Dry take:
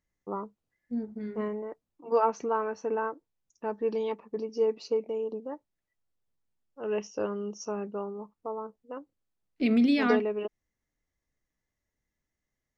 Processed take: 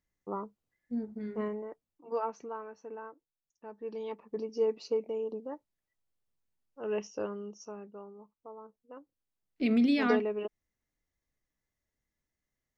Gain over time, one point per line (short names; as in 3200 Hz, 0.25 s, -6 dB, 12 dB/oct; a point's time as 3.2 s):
1.46 s -2 dB
2.73 s -13.5 dB
3.71 s -13.5 dB
4.34 s -2.5 dB
7.08 s -2.5 dB
7.88 s -12 dB
8.54 s -12 dB
9.7 s -2.5 dB